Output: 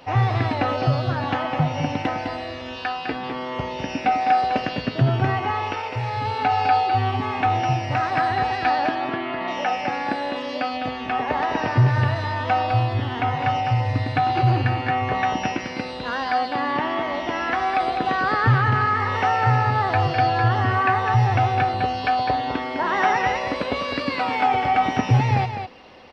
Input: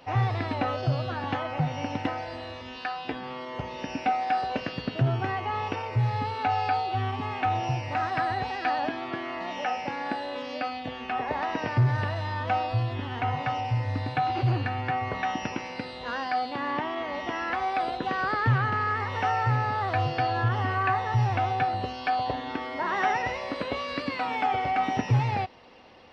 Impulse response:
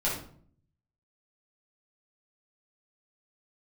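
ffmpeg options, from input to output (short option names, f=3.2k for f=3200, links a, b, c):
-filter_complex "[0:a]asettb=1/sr,asplit=3[a][b][c];[a]atrim=end=5.524[d];[b]atrim=start=5.52:end=6.25,asetpts=PTS-STARTPTS,afade=t=in:d=0.004:c=qsin,afade=t=out:st=0.726:d=0.004:c=qsin,equalizer=f=150:t=o:w=2.4:g=-10[e];[c]atrim=start=6.246[f];[d][e]acrossfade=d=0.004:c1=hsin:c2=qsin[g];[g][f]acrossfade=d=0.004:c1=qsin:c2=hsin,asettb=1/sr,asplit=3[h][i][j];[h]atrim=end=8.954[k];[i]atrim=start=8.95:end=9.48,asetpts=PTS-STARTPTS,afade=t=in:d=0.004:c=qsin,afade=t=out:st=0.526:d=0.004:c=qsin,lowpass=f=4k:w=0.5412,lowpass=f=4k:w=1.3066[l];[j]atrim=start=9.476[m];[k][l]acrossfade=d=0.004:c1=hsin:c2=qsin[n];[n][m]acrossfade=d=0.004:c1=qsin:c2=hsin,aecho=1:1:205:0.447,volume=5.5dB"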